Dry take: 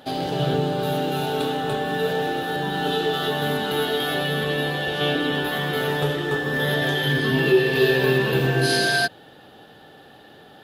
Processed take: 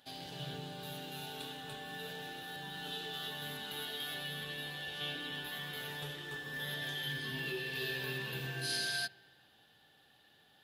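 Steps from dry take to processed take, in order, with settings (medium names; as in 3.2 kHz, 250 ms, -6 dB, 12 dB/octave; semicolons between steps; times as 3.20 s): amplifier tone stack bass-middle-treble 5-5-5; band-stop 1.3 kHz, Q 13; feedback echo behind a low-pass 69 ms, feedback 74%, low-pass 2.7 kHz, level -23 dB; trim -5 dB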